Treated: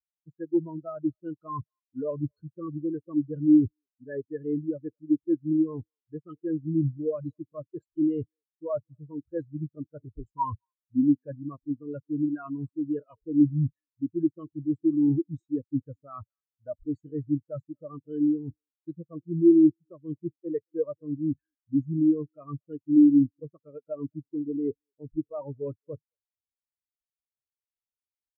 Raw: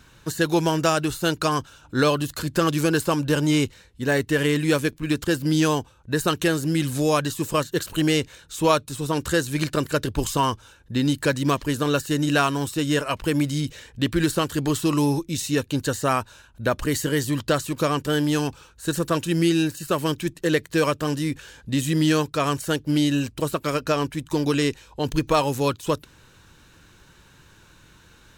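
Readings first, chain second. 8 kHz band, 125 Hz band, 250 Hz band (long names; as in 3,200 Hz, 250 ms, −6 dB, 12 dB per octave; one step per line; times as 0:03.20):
below −40 dB, −9.5 dB, −1.5 dB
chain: reversed playback
downward compressor 5 to 1, threshold −32 dBFS, peak gain reduction 16.5 dB
reversed playback
far-end echo of a speakerphone 220 ms, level −14 dB
every bin expanded away from the loudest bin 4 to 1
level +9 dB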